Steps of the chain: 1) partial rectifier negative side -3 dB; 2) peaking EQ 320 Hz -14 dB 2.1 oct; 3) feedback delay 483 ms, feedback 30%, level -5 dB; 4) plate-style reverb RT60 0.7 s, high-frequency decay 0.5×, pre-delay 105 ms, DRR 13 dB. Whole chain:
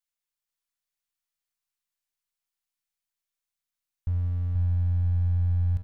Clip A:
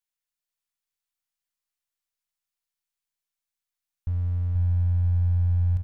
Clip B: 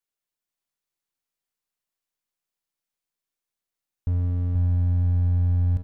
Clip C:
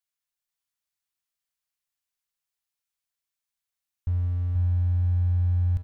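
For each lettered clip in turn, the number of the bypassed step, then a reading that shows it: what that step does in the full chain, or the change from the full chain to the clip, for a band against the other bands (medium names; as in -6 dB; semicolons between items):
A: 4, momentary loudness spread change +2 LU; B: 2, loudness change +3.0 LU; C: 1, distortion -15 dB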